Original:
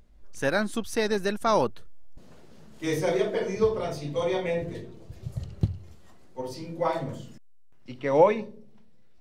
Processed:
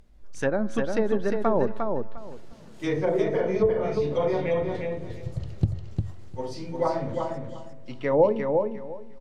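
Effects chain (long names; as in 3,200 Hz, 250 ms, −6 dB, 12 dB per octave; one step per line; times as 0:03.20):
tuned comb filter 110 Hz, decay 1.2 s, harmonics all, mix 40%
treble cut that deepens with the level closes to 620 Hz, closed at −23.5 dBFS
repeating echo 353 ms, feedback 19%, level −4.5 dB
level +5.5 dB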